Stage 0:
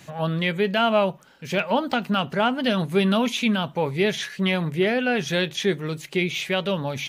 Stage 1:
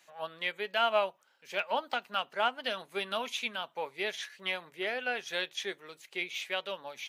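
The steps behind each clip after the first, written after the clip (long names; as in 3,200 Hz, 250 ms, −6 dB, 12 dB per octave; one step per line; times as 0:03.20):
high-pass filter 610 Hz 12 dB per octave
expander for the loud parts 1.5 to 1, over −37 dBFS
level −4.5 dB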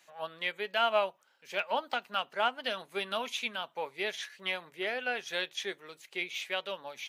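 no processing that can be heard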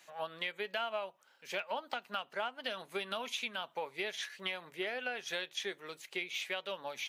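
downward compressor 6 to 1, threshold −37 dBFS, peak gain reduction 14 dB
level +2.5 dB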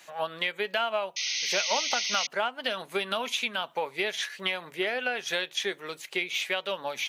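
sound drawn into the spectrogram noise, 0:01.16–0:02.27, 1,900–6,500 Hz −39 dBFS
level +8.5 dB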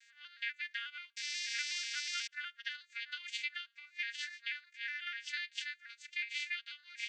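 vocoder with an arpeggio as carrier major triad, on A#3, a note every 122 ms
Chebyshev high-pass with heavy ripple 1,500 Hz, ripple 3 dB
level −1 dB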